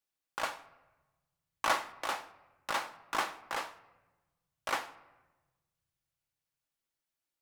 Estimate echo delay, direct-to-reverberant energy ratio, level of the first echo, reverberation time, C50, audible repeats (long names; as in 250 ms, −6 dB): no echo audible, 9.5 dB, no echo audible, 1.2 s, 16.5 dB, no echo audible